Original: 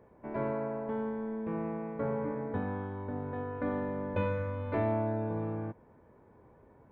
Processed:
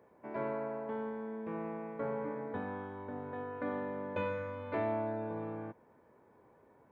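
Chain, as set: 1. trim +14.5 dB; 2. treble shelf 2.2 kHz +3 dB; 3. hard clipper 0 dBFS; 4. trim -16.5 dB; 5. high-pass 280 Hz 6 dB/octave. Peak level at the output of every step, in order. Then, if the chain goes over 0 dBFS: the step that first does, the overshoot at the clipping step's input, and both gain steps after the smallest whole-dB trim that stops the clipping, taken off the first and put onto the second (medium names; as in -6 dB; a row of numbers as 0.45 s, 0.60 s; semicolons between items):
-5.0 dBFS, -4.5 dBFS, -4.5 dBFS, -21.0 dBFS, -23.5 dBFS; nothing clips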